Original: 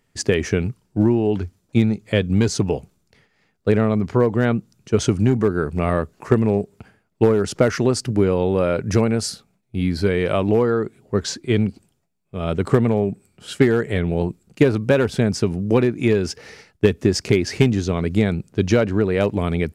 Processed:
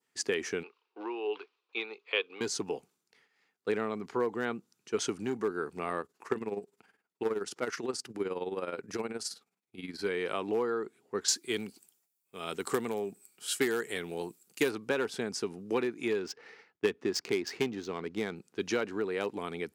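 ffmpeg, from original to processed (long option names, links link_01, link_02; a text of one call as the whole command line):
ffmpeg -i in.wav -filter_complex "[0:a]asettb=1/sr,asplit=3[link_01][link_02][link_03];[link_01]atrim=end=0.634[link_04];[link_02]atrim=start=0.63:end=2.41,asetpts=PTS-STARTPTS,afade=type=in:duration=0.004:curve=qsin,afade=type=out:start_time=1.776:duration=0.004:curve=qsin,highpass=frequency=420:width=0.5412,highpass=frequency=420:width=1.3066,equalizer=frequency=440:width_type=q:width=4:gain=4,equalizer=frequency=630:width_type=q:width=4:gain=-5,equalizer=frequency=1100:width_type=q:width=4:gain=8,equalizer=frequency=1800:width_type=q:width=4:gain=-4,equalizer=frequency=2600:width_type=q:width=4:gain=10,equalizer=frequency=3800:width_type=q:width=4:gain=4,lowpass=frequency=4300:width=0.5412,lowpass=frequency=4300:width=1.3066[link_05];[link_03]atrim=start=2.406[link_06];[link_04][link_05]acrossfade=duration=0.004:curve1=hsin:curve2=qsin[link_07];[link_07][link_06]acrossfade=duration=0.004:curve1=qsin:curve2=hsin,asplit=3[link_08][link_09][link_10];[link_08]afade=type=out:start_time=6.01:duration=0.02[link_11];[link_09]tremolo=f=19:d=0.69,afade=type=in:start_time=6.01:duration=0.02,afade=type=out:start_time=9.99:duration=0.02[link_12];[link_10]afade=type=in:start_time=9.99:duration=0.02[link_13];[link_11][link_12][link_13]amix=inputs=3:normalize=0,asettb=1/sr,asplit=3[link_14][link_15][link_16];[link_14]atrim=end=11.284[link_17];[link_15]atrim=start=11.28:end=14.71,asetpts=PTS-STARTPTS,afade=type=in:duration=0.004:curve=qsin,afade=type=out:start_time=3.426:duration=0.004:curve=qsin,aemphasis=mode=production:type=75fm[link_18];[link_16]atrim=start=14.706[link_19];[link_17][link_18]acrossfade=duration=0.004:curve1=hsin:curve2=qsin[link_20];[link_20][link_19]acrossfade=duration=0.004:curve1=qsin:curve2=hsin,asettb=1/sr,asplit=3[link_21][link_22][link_23];[link_21]atrim=end=16.194[link_24];[link_22]atrim=start=16.19:end=18.36,asetpts=PTS-STARTPTS,afade=type=in:duration=0.004:curve=qsin,afade=type=out:start_time=2.166:duration=0.004:curve=qsin,adynamicsmooth=sensitivity=3.5:basefreq=2700[link_25];[link_23]atrim=start=18.356[link_26];[link_24][link_25]acrossfade=duration=0.004:curve1=hsin:curve2=qsin[link_27];[link_27][link_26]acrossfade=duration=0.004:curve1=qsin:curve2=hsin,adynamicequalizer=threshold=0.01:dfrequency=2200:dqfactor=1.2:tfrequency=2200:tqfactor=1.2:attack=5:release=100:ratio=0.375:range=2:mode=cutabove:tftype=bell,highpass=410,equalizer=frequency=600:width=3.9:gain=-11,volume=-7.5dB" out.wav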